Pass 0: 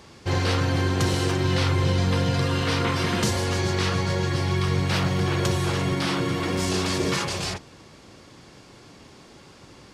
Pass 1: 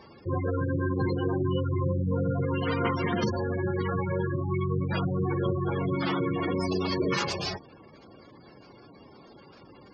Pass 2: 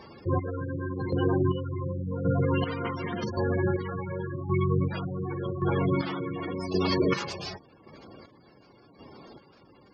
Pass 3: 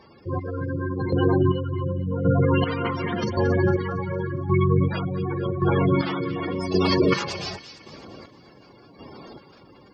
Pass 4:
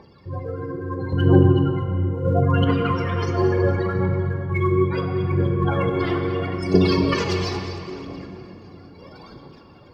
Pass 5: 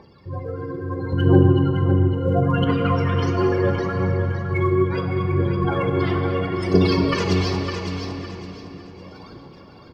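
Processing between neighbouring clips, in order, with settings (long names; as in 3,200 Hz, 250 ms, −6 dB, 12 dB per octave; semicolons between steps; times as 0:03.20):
gate on every frequency bin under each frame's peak −15 dB strong; low-shelf EQ 120 Hz −10 dB
square-wave tremolo 0.89 Hz, depth 60%, duty 35%; level +3 dB
delay with a high-pass on its return 228 ms, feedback 46%, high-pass 2,200 Hz, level −10.5 dB; automatic gain control gain up to 10 dB; level −4 dB
phase shifter 0.74 Hz, delay 3 ms, feedback 71%; rectangular room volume 150 cubic metres, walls hard, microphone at 0.33 metres; level −3.5 dB
repeating echo 559 ms, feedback 29%, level −7 dB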